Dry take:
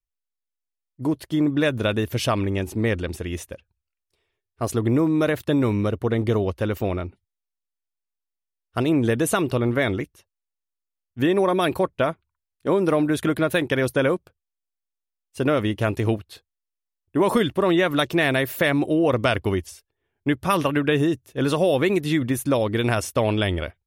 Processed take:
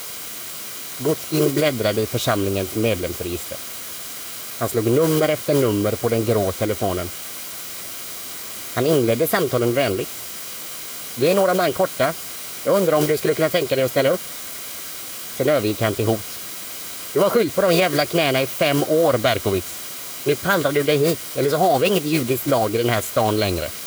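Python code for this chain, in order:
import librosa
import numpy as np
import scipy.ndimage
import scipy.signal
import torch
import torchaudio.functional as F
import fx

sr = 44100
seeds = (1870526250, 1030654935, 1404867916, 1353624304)

y = fx.dmg_noise_colour(x, sr, seeds[0], colour='white', level_db=-34.0)
y = fx.notch_comb(y, sr, f0_hz=880.0)
y = fx.formant_shift(y, sr, semitones=4)
y = y * librosa.db_to_amplitude(3.0)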